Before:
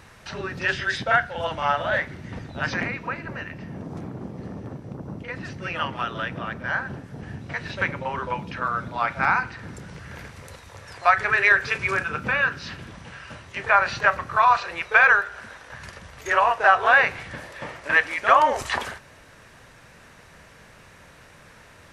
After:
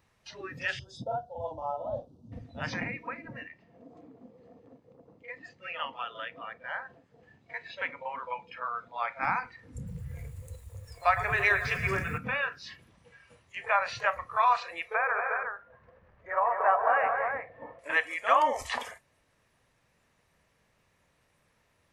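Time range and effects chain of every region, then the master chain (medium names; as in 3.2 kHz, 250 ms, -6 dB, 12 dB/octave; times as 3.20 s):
0.79–2.32 s: Butterworth band-stop 2 kHz, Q 0.61 + treble shelf 2 kHz -6.5 dB
3.47–9.23 s: low-pass 7.8 kHz 24 dB/octave + bass shelf 260 Hz -10 dB + band-stop 5.7 kHz, Q 9.6
9.75–12.18 s: bass shelf 210 Hz +11 dB + bit-crushed delay 110 ms, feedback 80%, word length 7-bit, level -12 dB
14.94–17.79 s: low-pass 1.4 kHz + multi-tap echo 150/212/232/359 ms -12/-9.5/-6/-6 dB
whole clip: spectral noise reduction 14 dB; peaking EQ 1.5 kHz -6.5 dB 0.3 oct; trim -6 dB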